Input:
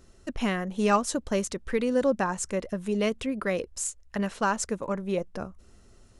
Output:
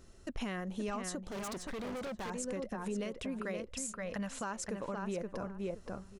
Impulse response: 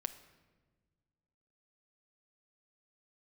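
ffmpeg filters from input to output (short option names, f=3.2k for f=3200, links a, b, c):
-filter_complex "[0:a]acompressor=threshold=-27dB:ratio=2.5,asplit=2[a][b];[b]adelay=523,lowpass=f=3.1k:p=1,volume=-5dB,asplit=2[c][d];[d]adelay=523,lowpass=f=3.1k:p=1,volume=0.16,asplit=2[e][f];[f]adelay=523,lowpass=f=3.1k:p=1,volume=0.16[g];[a][c][e][g]amix=inputs=4:normalize=0,asettb=1/sr,asplit=3[h][i][j];[h]atrim=end=1.274[k];[i]atrim=start=1.27:end=2.3,asetpts=PTS-STARTPTS,afade=t=in:d=0.004:c=qsin,afade=t=out:st=1.026:d=0.004:c=qsin,asoftclip=type=hard:threshold=-36.5dB[l];[j]atrim=start=2.296[m];[k][l]acrossfade=d=0.004:c1=hsin:c2=qsin[n];[n][m]acrossfade=d=0.004:c1=qsin:c2=hsin,asettb=1/sr,asplit=3[o][p][q];[o]atrim=end=3.694[r];[p]atrim=start=3.69:end=4.43,asetpts=PTS-STARTPTS,afade=t=in:d=0.004:c=qsin,afade=t=out:st=0.736:d=0.004:c=qsin,equalizer=f=370:t=o:w=0.38:g=-13.5[s];[q]atrim=start=4.426[t];[r][s]acrossfade=d=0.004:c1=hsin:c2=qsin[u];[u][t]acrossfade=d=0.004:c1=qsin:c2=hsin,alimiter=level_in=3dB:limit=-24dB:level=0:latency=1:release=214,volume=-3dB,volume=-2dB"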